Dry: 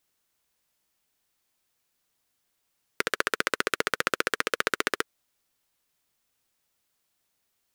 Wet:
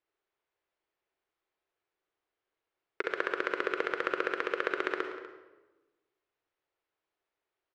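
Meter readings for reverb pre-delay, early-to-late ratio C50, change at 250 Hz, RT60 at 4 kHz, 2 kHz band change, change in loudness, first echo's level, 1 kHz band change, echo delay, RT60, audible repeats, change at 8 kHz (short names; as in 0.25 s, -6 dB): 36 ms, 5.5 dB, -1.5 dB, 0.80 s, -5.5 dB, -5.0 dB, -16.5 dB, -4.0 dB, 0.245 s, 1.2 s, 1, under -20 dB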